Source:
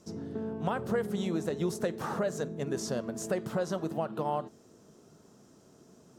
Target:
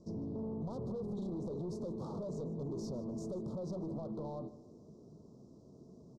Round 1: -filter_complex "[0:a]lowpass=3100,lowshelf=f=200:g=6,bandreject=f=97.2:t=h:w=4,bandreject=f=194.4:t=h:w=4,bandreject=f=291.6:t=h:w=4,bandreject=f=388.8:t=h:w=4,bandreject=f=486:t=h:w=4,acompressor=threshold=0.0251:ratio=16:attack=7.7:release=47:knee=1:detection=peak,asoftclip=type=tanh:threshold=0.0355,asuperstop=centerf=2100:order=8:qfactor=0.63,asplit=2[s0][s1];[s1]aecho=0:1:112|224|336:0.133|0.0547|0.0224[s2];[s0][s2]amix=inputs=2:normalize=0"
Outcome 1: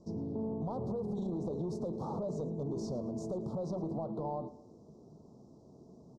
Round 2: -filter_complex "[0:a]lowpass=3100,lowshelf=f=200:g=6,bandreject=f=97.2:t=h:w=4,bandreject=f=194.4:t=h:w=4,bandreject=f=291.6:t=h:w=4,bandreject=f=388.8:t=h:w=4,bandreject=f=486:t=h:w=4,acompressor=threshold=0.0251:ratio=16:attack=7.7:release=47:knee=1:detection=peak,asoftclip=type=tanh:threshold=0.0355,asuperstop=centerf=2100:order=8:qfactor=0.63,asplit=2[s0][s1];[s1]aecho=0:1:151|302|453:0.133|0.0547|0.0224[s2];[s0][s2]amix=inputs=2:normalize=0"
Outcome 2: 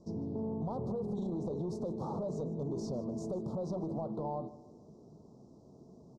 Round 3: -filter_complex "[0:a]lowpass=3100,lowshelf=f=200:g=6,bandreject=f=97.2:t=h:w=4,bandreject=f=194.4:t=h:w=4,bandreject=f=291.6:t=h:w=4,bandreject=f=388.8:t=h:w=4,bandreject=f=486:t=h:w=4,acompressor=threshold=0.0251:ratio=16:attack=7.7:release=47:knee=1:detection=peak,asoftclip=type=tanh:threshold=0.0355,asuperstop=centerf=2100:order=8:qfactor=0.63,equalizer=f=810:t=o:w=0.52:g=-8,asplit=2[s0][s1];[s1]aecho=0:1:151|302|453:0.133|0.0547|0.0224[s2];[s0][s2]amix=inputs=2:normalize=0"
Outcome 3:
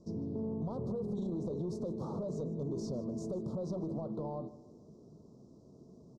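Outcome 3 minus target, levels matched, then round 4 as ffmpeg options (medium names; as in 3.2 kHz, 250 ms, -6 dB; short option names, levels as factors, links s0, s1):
saturation: distortion -7 dB
-filter_complex "[0:a]lowpass=3100,lowshelf=f=200:g=6,bandreject=f=97.2:t=h:w=4,bandreject=f=194.4:t=h:w=4,bandreject=f=291.6:t=h:w=4,bandreject=f=388.8:t=h:w=4,bandreject=f=486:t=h:w=4,acompressor=threshold=0.0251:ratio=16:attack=7.7:release=47:knee=1:detection=peak,asoftclip=type=tanh:threshold=0.0168,asuperstop=centerf=2100:order=8:qfactor=0.63,equalizer=f=810:t=o:w=0.52:g=-8,asplit=2[s0][s1];[s1]aecho=0:1:151|302|453:0.133|0.0547|0.0224[s2];[s0][s2]amix=inputs=2:normalize=0"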